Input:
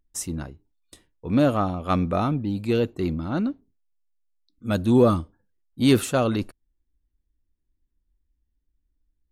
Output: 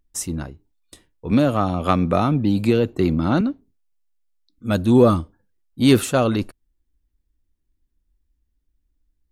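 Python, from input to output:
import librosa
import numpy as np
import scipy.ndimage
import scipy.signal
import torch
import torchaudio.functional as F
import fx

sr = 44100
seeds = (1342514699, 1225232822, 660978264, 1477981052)

y = fx.band_squash(x, sr, depth_pct=100, at=(1.31, 3.41))
y = y * librosa.db_to_amplitude(3.5)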